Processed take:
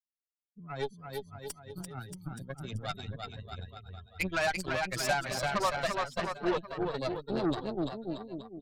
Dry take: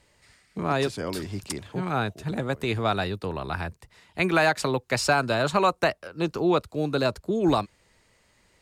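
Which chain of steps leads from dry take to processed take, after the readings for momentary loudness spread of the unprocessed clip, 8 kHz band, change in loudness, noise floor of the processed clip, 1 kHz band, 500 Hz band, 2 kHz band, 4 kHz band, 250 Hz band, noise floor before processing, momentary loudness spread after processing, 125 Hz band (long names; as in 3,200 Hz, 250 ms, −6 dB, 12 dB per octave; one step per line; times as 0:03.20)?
11 LU, −5.0 dB, −8.5 dB, below −85 dBFS, −8.0 dB, −8.5 dB, −7.0 dB, −7.0 dB, −9.0 dB, −64 dBFS, 14 LU, −9.5 dB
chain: spectral dynamics exaggerated over time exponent 3
bouncing-ball delay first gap 340 ms, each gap 0.85×, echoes 5
harmonic generator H 8 −17 dB, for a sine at −13 dBFS
level −4.5 dB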